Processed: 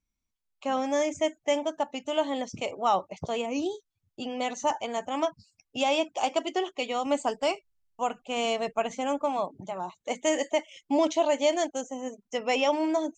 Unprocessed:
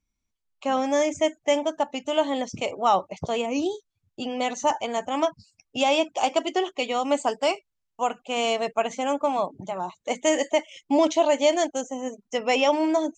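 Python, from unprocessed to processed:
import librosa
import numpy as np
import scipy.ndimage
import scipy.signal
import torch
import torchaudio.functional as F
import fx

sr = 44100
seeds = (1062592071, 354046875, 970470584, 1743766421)

y = fx.low_shelf(x, sr, hz=110.0, db=12.0, at=(7.06, 9.23))
y = y * 10.0 ** (-4.0 / 20.0)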